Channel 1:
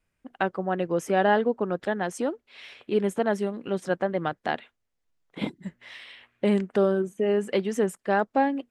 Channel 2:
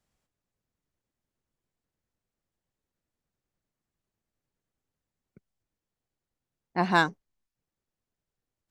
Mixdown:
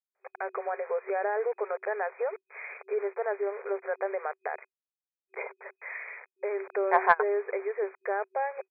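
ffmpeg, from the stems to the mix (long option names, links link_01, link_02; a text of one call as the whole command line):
ffmpeg -i stem1.wav -i stem2.wav -filter_complex "[0:a]acompressor=threshold=-23dB:ratio=6,alimiter=level_in=3dB:limit=-24dB:level=0:latency=1:release=169,volume=-3dB,acrusher=bits=7:mix=0:aa=0.000001,volume=0.5dB,asplit=2[link_01][link_02];[1:a]adelay=150,volume=-1.5dB[link_03];[link_02]apad=whole_len=390669[link_04];[link_03][link_04]sidechaingate=range=-29dB:threshold=-41dB:ratio=16:detection=peak[link_05];[link_01][link_05]amix=inputs=2:normalize=0,afftfilt=real='re*between(b*sr/4096,380,2500)':imag='im*between(b*sr/4096,380,2500)':win_size=4096:overlap=0.75,acontrast=70" out.wav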